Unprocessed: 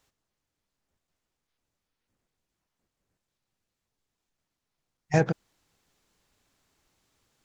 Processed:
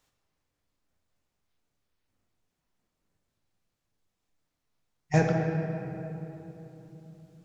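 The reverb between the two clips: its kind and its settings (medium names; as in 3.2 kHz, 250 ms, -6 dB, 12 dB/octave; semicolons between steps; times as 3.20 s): simulated room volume 200 m³, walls hard, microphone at 0.43 m; trim -2 dB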